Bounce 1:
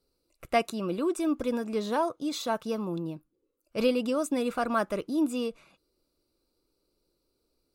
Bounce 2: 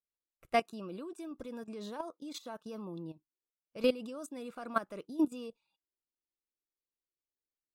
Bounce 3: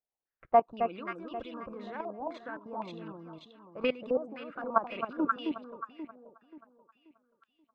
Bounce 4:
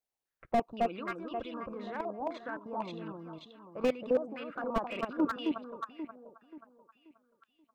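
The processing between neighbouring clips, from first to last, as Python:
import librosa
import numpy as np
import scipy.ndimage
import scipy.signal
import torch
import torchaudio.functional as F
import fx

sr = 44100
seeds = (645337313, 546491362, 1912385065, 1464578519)

y1 = fx.noise_reduce_blind(x, sr, reduce_db=17)
y1 = fx.level_steps(y1, sr, step_db=12)
y1 = fx.upward_expand(y1, sr, threshold_db=-45.0, expansion=1.5)
y2 = fx.hpss(y1, sr, part='harmonic', gain_db=-5)
y2 = fx.echo_alternate(y2, sr, ms=266, hz=1100.0, feedback_pct=59, wet_db=-2.5)
y2 = fx.filter_held_lowpass(y2, sr, hz=3.9, low_hz=770.0, high_hz=3100.0)
y2 = y2 * librosa.db_to_amplitude(2.0)
y3 = fx.slew_limit(y2, sr, full_power_hz=35.0)
y3 = y3 * librosa.db_to_amplitude(1.5)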